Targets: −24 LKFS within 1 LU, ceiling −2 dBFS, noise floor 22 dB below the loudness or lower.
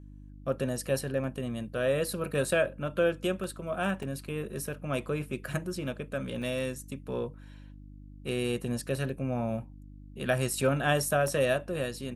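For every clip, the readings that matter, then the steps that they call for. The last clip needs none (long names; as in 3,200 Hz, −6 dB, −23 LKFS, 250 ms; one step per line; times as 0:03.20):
number of dropouts 6; longest dropout 1.3 ms; mains hum 50 Hz; hum harmonics up to 300 Hz; level of the hum −46 dBFS; integrated loudness −31.5 LKFS; sample peak −12.0 dBFS; target loudness −24.0 LKFS
→ repair the gap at 0:01.24/0:03.44/0:04.03/0:05.53/0:06.42/0:11.28, 1.3 ms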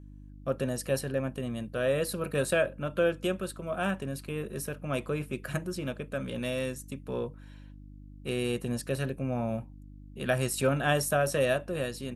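number of dropouts 0; mains hum 50 Hz; hum harmonics up to 300 Hz; level of the hum −46 dBFS
→ hum removal 50 Hz, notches 6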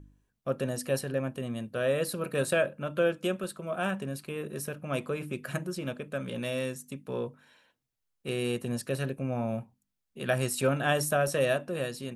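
mains hum none found; integrated loudness −31.5 LKFS; sample peak −12.0 dBFS; target loudness −24.0 LKFS
→ level +7.5 dB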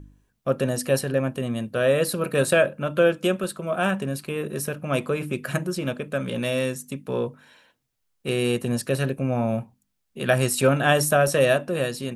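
integrated loudness −24.0 LKFS; sample peak −4.5 dBFS; background noise floor −75 dBFS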